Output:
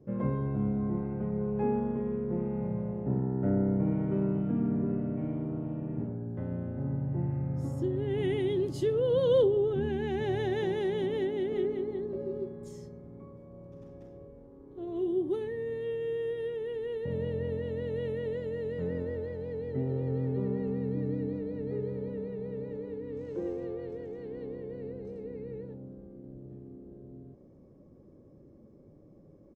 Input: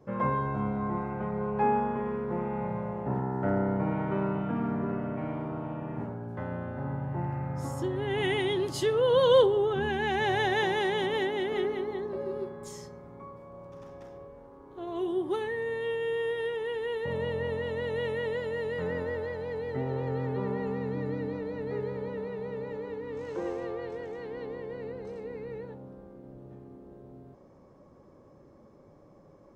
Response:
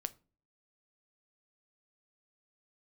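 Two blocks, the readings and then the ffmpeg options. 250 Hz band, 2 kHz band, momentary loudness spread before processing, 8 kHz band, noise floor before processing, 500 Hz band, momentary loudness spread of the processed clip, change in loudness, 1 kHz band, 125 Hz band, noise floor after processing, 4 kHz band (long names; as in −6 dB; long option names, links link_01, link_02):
+1.5 dB, −12.5 dB, 20 LU, can't be measured, −56 dBFS, −2.0 dB, 18 LU, −1.5 dB, −12.5 dB, +2.0 dB, −56 dBFS, −11.0 dB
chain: -af "firequalizer=gain_entry='entry(310,0);entry(930,-17);entry(2300,-13)':delay=0.05:min_phase=1,volume=2dB"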